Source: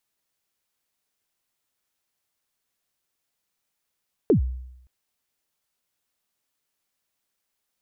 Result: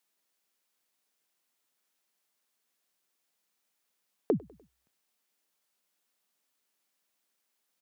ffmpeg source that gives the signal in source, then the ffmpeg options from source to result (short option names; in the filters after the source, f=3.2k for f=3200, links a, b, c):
-f lavfi -i "aevalsrc='0.251*pow(10,-3*t/0.82)*sin(2*PI*(490*0.108/log(63/490)*(exp(log(63/490)*min(t,0.108)/0.108)-1)+63*max(t-0.108,0)))':d=0.57:s=44100"
-af "highpass=f=170:w=0.5412,highpass=f=170:w=1.3066,acompressor=threshold=-25dB:ratio=6,aecho=1:1:99|198|297:0.0631|0.0328|0.0171"